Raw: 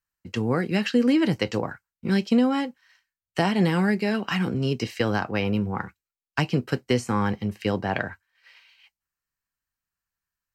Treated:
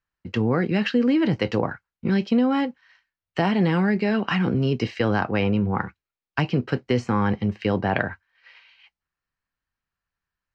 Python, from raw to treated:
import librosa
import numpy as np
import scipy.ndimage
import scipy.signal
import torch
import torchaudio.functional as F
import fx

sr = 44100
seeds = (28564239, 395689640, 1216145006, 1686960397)

p1 = fx.over_compress(x, sr, threshold_db=-26.0, ratio=-1.0)
p2 = x + F.gain(torch.from_numpy(p1), -3.0).numpy()
p3 = fx.air_absorb(p2, sr, metres=180.0)
y = F.gain(torch.from_numpy(p3), -1.0).numpy()